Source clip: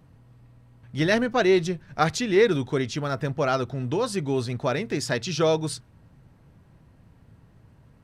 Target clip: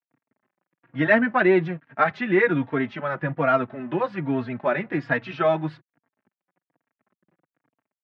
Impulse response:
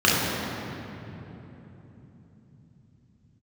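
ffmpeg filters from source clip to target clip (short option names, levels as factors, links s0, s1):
-filter_complex "[0:a]aeval=exprs='sgn(val(0))*max(abs(val(0))-0.00447,0)':c=same,highpass=f=160:w=0.5412,highpass=f=160:w=1.3066,equalizer=f=210:t=q:w=4:g=-4,equalizer=f=430:t=q:w=4:g=-9,equalizer=f=1700:t=q:w=4:g=4,lowpass=f=2400:w=0.5412,lowpass=f=2400:w=1.3066,asplit=2[s0][s1];[s1]adelay=3.7,afreqshift=-1.2[s2];[s0][s2]amix=inputs=2:normalize=1,volume=2.24"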